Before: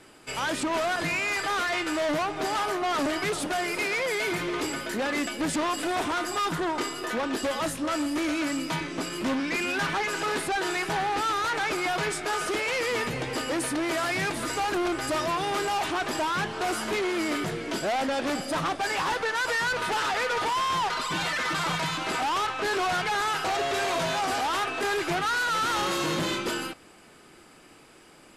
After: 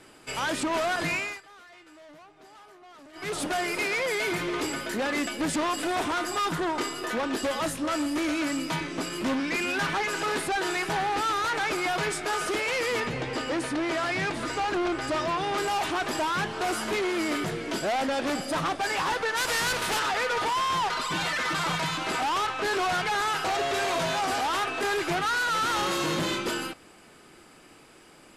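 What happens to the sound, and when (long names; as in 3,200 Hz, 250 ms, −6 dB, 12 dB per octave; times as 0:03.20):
0:01.14–0:03.40: duck −23.5 dB, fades 0.27 s
0:13.00–0:15.58: high-frequency loss of the air 61 metres
0:19.36–0:19.98: compressing power law on the bin magnitudes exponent 0.65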